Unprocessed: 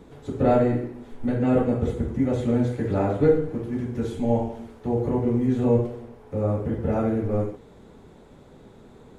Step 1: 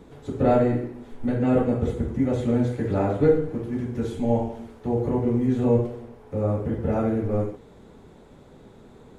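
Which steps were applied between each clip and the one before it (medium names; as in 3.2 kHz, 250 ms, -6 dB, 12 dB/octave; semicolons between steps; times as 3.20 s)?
no audible change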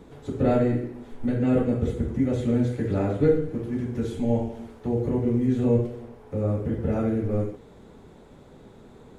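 dynamic bell 880 Hz, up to -7 dB, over -39 dBFS, Q 1.2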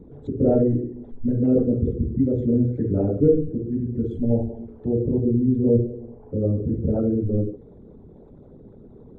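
resonances exaggerated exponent 2; trim +3 dB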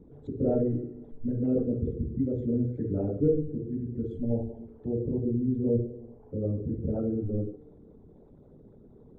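feedback comb 150 Hz, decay 1.8 s, mix 60%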